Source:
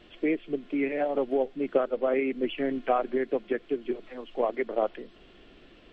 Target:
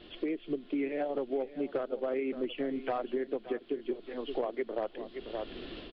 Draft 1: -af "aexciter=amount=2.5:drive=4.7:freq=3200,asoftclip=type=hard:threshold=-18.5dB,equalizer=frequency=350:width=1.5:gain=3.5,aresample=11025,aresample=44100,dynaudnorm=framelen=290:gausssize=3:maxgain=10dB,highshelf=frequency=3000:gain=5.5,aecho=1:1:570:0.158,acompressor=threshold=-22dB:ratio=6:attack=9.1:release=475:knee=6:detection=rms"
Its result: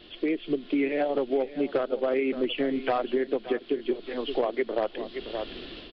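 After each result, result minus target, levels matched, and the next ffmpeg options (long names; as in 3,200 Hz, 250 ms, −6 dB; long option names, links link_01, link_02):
downward compressor: peak gain reduction −6.5 dB; 4,000 Hz band +3.0 dB
-af "aexciter=amount=2.5:drive=4.7:freq=3200,asoftclip=type=hard:threshold=-18.5dB,equalizer=frequency=350:width=1.5:gain=3.5,aresample=11025,aresample=44100,dynaudnorm=framelen=290:gausssize=3:maxgain=10dB,highshelf=frequency=3000:gain=5.5,aecho=1:1:570:0.158,acompressor=threshold=-30dB:ratio=6:attack=9.1:release=475:knee=6:detection=rms"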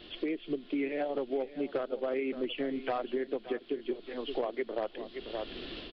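4,000 Hz band +4.5 dB
-af "aexciter=amount=2.5:drive=4.7:freq=3200,asoftclip=type=hard:threshold=-18.5dB,equalizer=frequency=350:width=1.5:gain=3.5,aresample=11025,aresample=44100,dynaudnorm=framelen=290:gausssize=3:maxgain=10dB,highshelf=frequency=3000:gain=-3.5,aecho=1:1:570:0.158,acompressor=threshold=-30dB:ratio=6:attack=9.1:release=475:knee=6:detection=rms"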